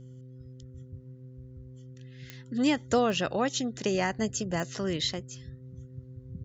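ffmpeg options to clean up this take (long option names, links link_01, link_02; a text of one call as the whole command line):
ffmpeg -i in.wav -af "adeclick=threshold=4,bandreject=frequency=128.2:width_type=h:width=4,bandreject=frequency=256.4:width_type=h:width=4,bandreject=frequency=384.6:width_type=h:width=4,bandreject=frequency=512.8:width_type=h:width=4" out.wav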